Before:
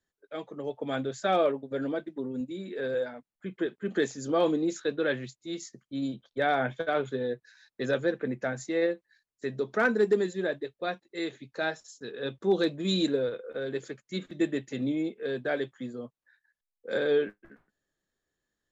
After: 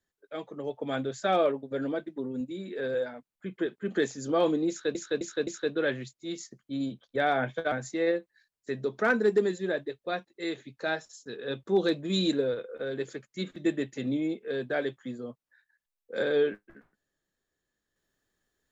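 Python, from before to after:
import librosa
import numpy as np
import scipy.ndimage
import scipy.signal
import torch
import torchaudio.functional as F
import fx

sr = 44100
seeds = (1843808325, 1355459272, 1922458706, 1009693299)

y = fx.edit(x, sr, fx.repeat(start_s=4.69, length_s=0.26, count=4),
    fx.cut(start_s=6.94, length_s=1.53), tone=tone)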